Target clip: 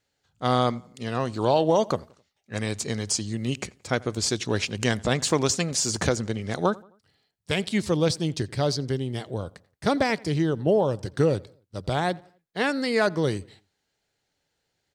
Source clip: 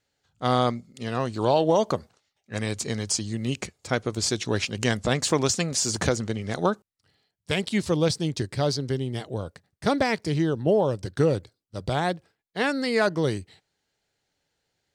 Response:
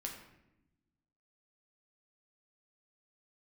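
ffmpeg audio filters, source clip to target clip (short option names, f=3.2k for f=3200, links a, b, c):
-filter_complex "[0:a]asplit=2[a][b];[b]adelay=87,lowpass=f=3.3k:p=1,volume=-23.5dB,asplit=2[c][d];[d]adelay=87,lowpass=f=3.3k:p=1,volume=0.43,asplit=2[e][f];[f]adelay=87,lowpass=f=3.3k:p=1,volume=0.43[g];[a][c][e][g]amix=inputs=4:normalize=0"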